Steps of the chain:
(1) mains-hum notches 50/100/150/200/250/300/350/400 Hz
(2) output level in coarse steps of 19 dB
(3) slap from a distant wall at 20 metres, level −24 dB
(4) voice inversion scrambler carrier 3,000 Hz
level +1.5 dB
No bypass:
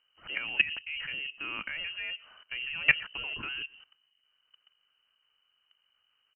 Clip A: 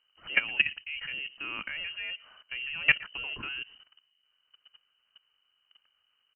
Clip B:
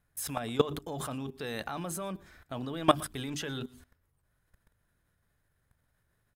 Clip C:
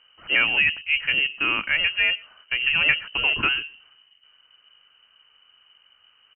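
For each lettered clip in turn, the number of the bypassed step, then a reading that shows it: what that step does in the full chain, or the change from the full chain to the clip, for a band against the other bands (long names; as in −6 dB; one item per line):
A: 1, change in integrated loudness +1.0 LU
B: 4, 2 kHz band −31.0 dB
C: 2, change in crest factor −9.0 dB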